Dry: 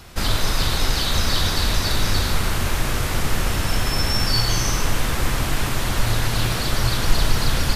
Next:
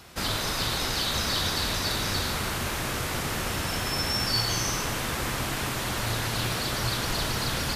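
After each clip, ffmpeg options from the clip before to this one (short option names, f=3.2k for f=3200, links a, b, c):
-af "highpass=f=140:p=1,volume=-4dB"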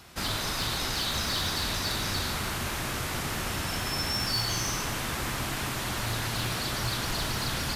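-af "acontrast=42,equalizer=f=490:t=o:w=0.47:g=-3.5,asoftclip=type=hard:threshold=-15.5dB,volume=-7.5dB"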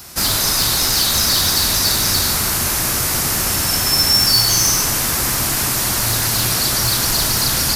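-af "aexciter=amount=2.4:drive=7.6:freq=4.6k,volume=9dB"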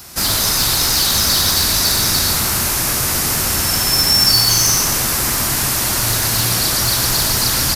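-af "aecho=1:1:120:0.473"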